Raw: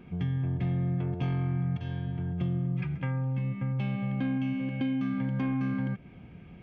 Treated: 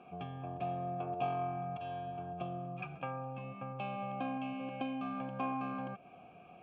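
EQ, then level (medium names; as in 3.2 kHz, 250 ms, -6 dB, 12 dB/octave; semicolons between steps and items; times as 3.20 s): vowel filter a; band-stop 2.1 kHz, Q 7.3; +12.5 dB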